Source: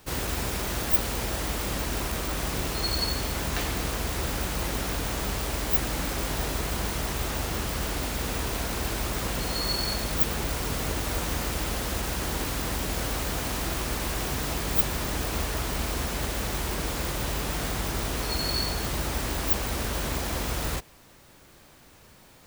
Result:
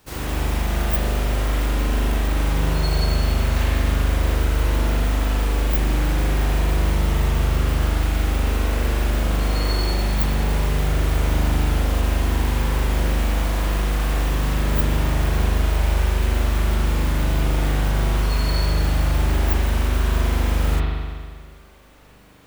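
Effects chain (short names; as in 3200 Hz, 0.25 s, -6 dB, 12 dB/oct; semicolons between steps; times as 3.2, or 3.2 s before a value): spring tank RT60 1.8 s, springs 40 ms, chirp 60 ms, DRR -6 dB; gain -3 dB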